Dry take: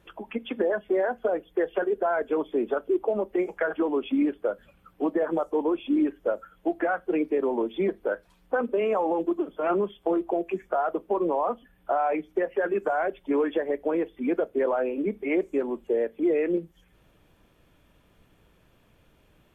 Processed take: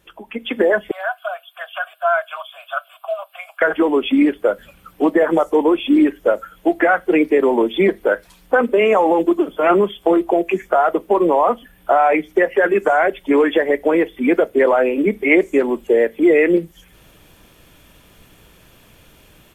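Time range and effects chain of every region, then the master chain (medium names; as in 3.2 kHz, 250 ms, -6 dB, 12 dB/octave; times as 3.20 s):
0.91–3.62 s: steep high-pass 650 Hz 96 dB/octave + static phaser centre 1.3 kHz, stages 8
whole clip: treble shelf 2.9 kHz +11 dB; level rider gain up to 11 dB; dynamic bell 2 kHz, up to +7 dB, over -43 dBFS, Q 5.2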